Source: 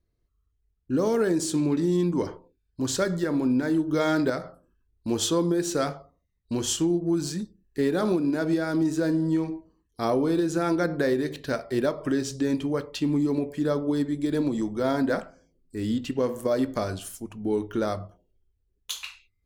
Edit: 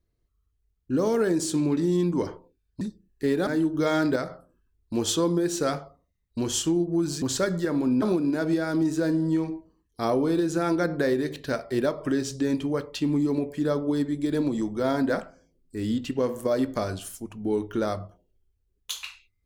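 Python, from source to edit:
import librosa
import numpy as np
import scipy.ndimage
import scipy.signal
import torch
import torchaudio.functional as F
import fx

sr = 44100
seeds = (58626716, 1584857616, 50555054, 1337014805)

y = fx.edit(x, sr, fx.swap(start_s=2.81, length_s=0.8, other_s=7.36, other_length_s=0.66), tone=tone)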